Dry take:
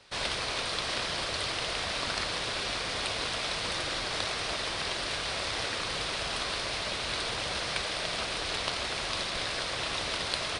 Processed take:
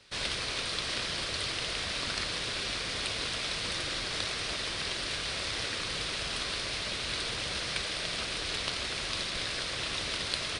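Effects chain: peaking EQ 810 Hz -7.5 dB 1.3 oct

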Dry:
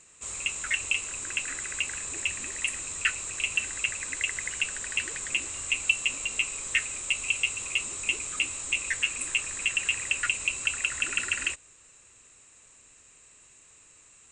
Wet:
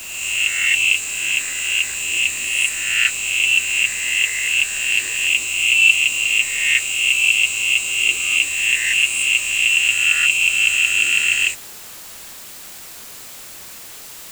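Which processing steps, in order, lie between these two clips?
reverse spectral sustain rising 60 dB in 1.21 s; resonant high shelf 1.9 kHz +7 dB, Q 1.5; word length cut 6-bit, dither triangular; trim -1 dB

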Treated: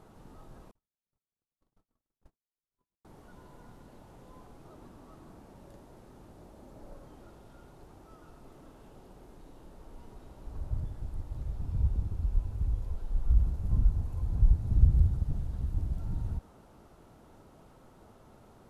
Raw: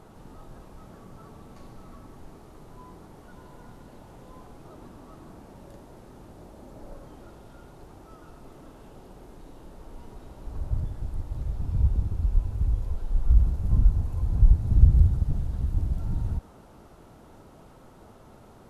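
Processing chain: 0.71–3.05 s: gate -39 dBFS, range -58 dB; trim -5.5 dB

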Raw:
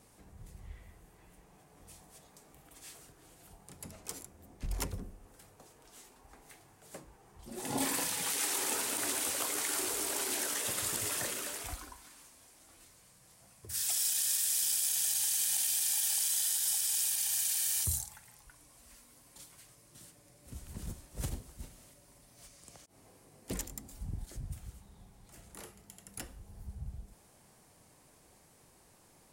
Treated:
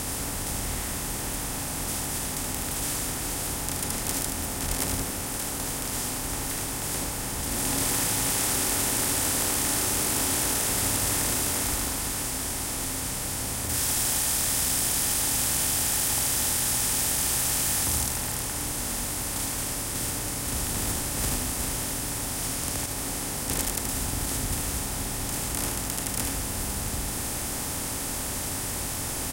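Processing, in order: spectral levelling over time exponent 0.2; delay 76 ms -5 dB; trim -2 dB

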